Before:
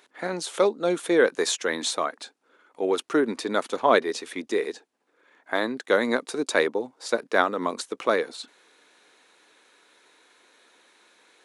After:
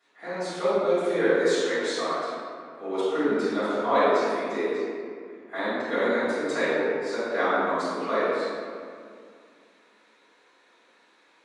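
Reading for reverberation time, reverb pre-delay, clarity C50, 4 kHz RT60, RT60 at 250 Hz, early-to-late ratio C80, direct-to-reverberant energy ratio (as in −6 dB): 2.2 s, 3 ms, −5.5 dB, 1.3 s, 2.7 s, −2.0 dB, −20.0 dB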